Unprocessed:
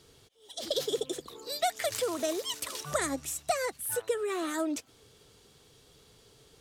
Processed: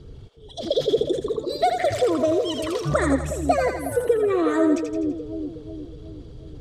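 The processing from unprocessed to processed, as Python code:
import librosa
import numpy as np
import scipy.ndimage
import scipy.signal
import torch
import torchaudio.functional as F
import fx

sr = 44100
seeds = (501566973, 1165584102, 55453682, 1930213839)

y = fx.envelope_sharpen(x, sr, power=1.5)
y = fx.riaa(y, sr, side='playback')
y = fx.echo_split(y, sr, split_hz=570.0, low_ms=366, high_ms=83, feedback_pct=52, wet_db=-5.5)
y = y * librosa.db_to_amplitude(7.5)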